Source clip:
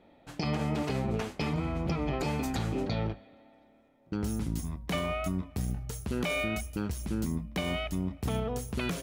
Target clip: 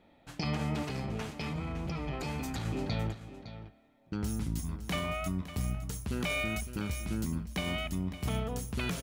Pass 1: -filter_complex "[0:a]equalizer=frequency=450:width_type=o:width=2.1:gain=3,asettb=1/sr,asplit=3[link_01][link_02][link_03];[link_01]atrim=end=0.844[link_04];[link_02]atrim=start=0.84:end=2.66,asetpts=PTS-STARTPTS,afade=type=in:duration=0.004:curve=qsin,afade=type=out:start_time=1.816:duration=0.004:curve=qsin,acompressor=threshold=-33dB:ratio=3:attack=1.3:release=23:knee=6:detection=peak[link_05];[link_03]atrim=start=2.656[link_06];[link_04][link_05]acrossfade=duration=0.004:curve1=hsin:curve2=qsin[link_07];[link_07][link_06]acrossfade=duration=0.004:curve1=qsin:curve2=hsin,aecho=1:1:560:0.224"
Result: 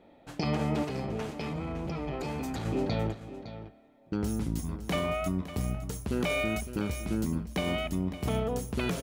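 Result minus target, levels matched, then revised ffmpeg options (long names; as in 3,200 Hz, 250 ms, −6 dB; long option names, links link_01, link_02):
500 Hz band +4.0 dB
-filter_complex "[0:a]equalizer=frequency=450:width_type=o:width=2.1:gain=-5,asettb=1/sr,asplit=3[link_01][link_02][link_03];[link_01]atrim=end=0.844[link_04];[link_02]atrim=start=0.84:end=2.66,asetpts=PTS-STARTPTS,afade=type=in:duration=0.004:curve=qsin,afade=type=out:start_time=1.816:duration=0.004:curve=qsin,acompressor=threshold=-33dB:ratio=3:attack=1.3:release=23:knee=6:detection=peak[link_05];[link_03]atrim=start=2.656[link_06];[link_04][link_05]acrossfade=duration=0.004:curve1=hsin:curve2=qsin[link_07];[link_07][link_06]acrossfade=duration=0.004:curve1=qsin:curve2=hsin,aecho=1:1:560:0.224"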